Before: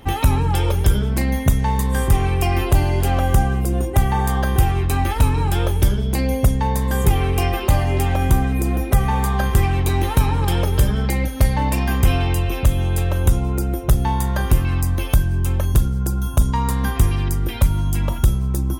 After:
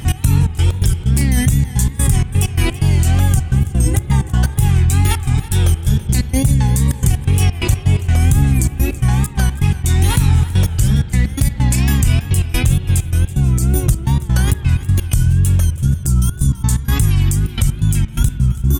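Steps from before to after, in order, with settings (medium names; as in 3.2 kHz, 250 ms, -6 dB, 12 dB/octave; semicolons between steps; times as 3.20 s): ten-band graphic EQ 125 Hz +10 dB, 500 Hz -10 dB, 1 kHz -7 dB, 8 kHz +12 dB; in parallel at +2 dB: compressor with a negative ratio -22 dBFS, ratio -1; on the sum: peak limiter -3 dBFS, peak gain reduction 7 dB; trance gate "x.xx.x.x.xxxxx." 128 bpm -24 dB; spring tank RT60 3.4 s, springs 43/58 ms, chirp 50 ms, DRR 11.5 dB; wow and flutter 110 cents; on a send: feedback delay 330 ms, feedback 25%, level -17 dB; on the sum: trim -1 dB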